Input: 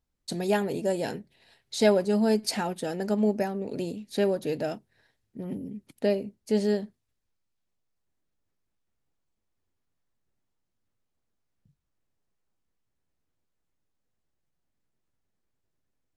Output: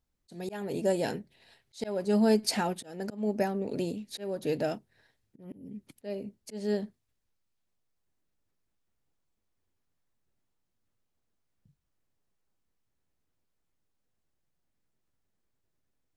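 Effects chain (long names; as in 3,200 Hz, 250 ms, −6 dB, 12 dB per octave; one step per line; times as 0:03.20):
volume swells 328 ms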